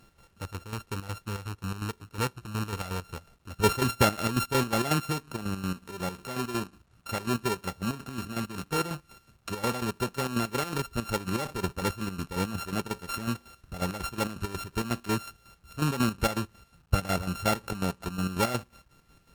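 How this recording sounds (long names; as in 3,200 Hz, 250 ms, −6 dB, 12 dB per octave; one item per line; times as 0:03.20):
a buzz of ramps at a fixed pitch in blocks of 32 samples
chopped level 5.5 Hz, depth 65%, duty 50%
a quantiser's noise floor 12 bits, dither none
MP3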